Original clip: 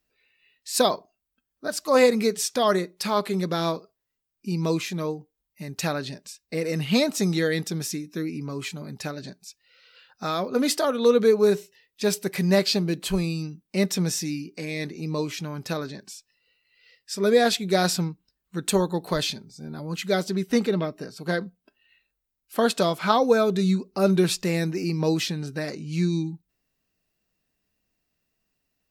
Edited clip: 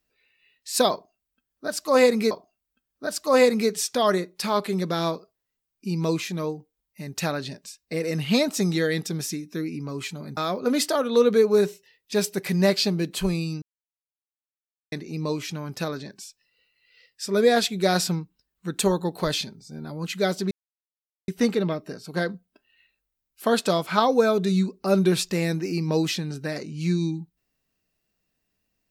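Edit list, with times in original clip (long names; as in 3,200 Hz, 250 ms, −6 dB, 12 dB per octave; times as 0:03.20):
0:00.92–0:02.31: repeat, 2 plays
0:08.98–0:10.26: remove
0:13.51–0:14.81: silence
0:20.40: splice in silence 0.77 s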